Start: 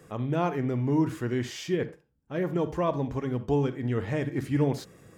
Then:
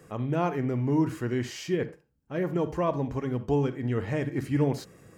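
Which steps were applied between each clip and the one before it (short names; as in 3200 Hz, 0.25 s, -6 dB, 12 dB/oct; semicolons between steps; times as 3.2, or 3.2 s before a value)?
notch 3500 Hz, Q 11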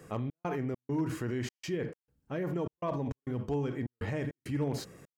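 in parallel at -2 dB: negative-ratio compressor -33 dBFS, ratio -0.5; on the sum: hard clip -16.5 dBFS, distortion -32 dB; step gate "xx.xx.xx" 101 bpm -60 dB; gain -7.5 dB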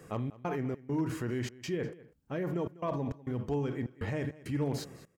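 echo 0.198 s -19.5 dB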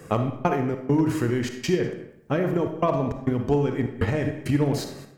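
transient shaper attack +7 dB, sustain +1 dB; on a send at -7 dB: reverb RT60 0.75 s, pre-delay 15 ms; on the sum: gain +7.5 dB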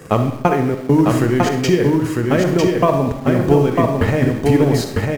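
in parallel at -11 dB: bit-crush 6-bit; on the sum: echo 0.95 s -3 dB; gain +5.5 dB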